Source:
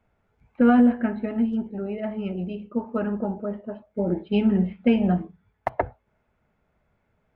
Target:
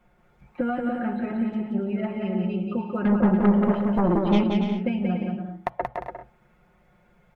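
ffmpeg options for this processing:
ffmpeg -i in.wav -filter_complex "[0:a]aecho=1:1:5.6:0.86,acompressor=threshold=-31dB:ratio=6,asettb=1/sr,asplit=3[link_01][link_02][link_03];[link_01]atrim=end=3.054[link_04];[link_02]atrim=start=3.05:end=4.44,asetpts=PTS-STARTPTS,afade=type=in:duration=0.004:curve=qsin,afade=type=out:start_time=1.386:duration=0.004:curve=qsin,aeval=exprs='0.0794*sin(PI/2*2.24*val(0)/0.0794)':channel_layout=same[link_05];[link_03]atrim=start=4.436[link_06];[link_04][link_05]acrossfade=duration=0.004:curve1=hsin:curve2=qsin[link_07];[link_07][link_06]acrossfade=duration=0.004:curve1=qsin:curve2=hsin,aecho=1:1:180|288|352.8|391.7|415:0.631|0.398|0.251|0.158|0.1,volume=5.5dB" out.wav

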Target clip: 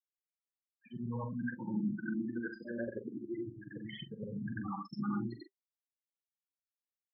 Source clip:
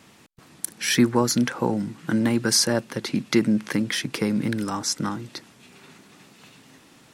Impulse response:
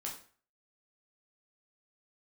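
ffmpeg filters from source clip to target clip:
-filter_complex "[0:a]afftfilt=real='re':imag='-im':win_size=8192:overlap=0.75,areverse,acompressor=threshold=-39dB:ratio=10,areverse,afwtdn=0.00251,equalizer=frequency=1600:width=3.8:gain=6.5,asplit=2[link_01][link_02];[link_02]adynamicsmooth=sensitivity=2.5:basefreq=5000,volume=1.5dB[link_03];[link_01][link_03]amix=inputs=2:normalize=0,afftfilt=real='re*gte(hypot(re,im),0.0501)':imag='im*gte(hypot(re,im),0.0501)':win_size=1024:overlap=0.75,adynamicequalizer=threshold=0.00158:dfrequency=160:dqfactor=5.1:tfrequency=160:tqfactor=5.1:attack=5:release=100:ratio=0.375:range=3:mode=cutabove:tftype=bell,flanger=delay=5.1:depth=1.7:regen=-56:speed=0.95:shape=sinusoidal,asplit=2[link_04][link_05];[link_05]adelay=43,volume=-10dB[link_06];[link_04][link_06]amix=inputs=2:normalize=0,asplit=2[link_07][link_08];[link_08]afreqshift=0.31[link_09];[link_07][link_09]amix=inputs=2:normalize=1,volume=5dB"

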